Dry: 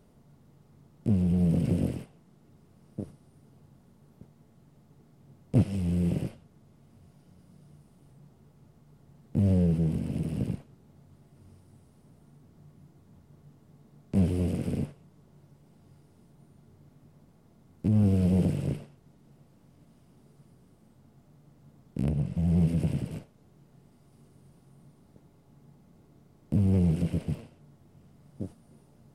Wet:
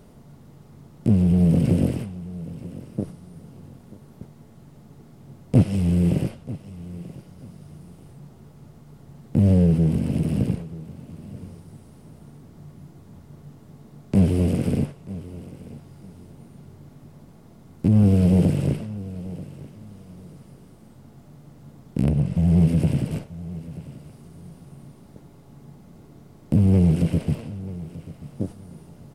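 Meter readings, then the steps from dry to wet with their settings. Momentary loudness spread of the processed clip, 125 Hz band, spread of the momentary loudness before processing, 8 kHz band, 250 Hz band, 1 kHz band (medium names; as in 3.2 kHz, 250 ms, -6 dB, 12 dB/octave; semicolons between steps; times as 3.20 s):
21 LU, +7.5 dB, 17 LU, no reading, +7.5 dB, +7.5 dB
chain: feedback delay 935 ms, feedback 26%, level -20.5 dB; in parallel at -1.5 dB: compression, threshold -35 dBFS, peak gain reduction 16.5 dB; on the sum: trim +5.5 dB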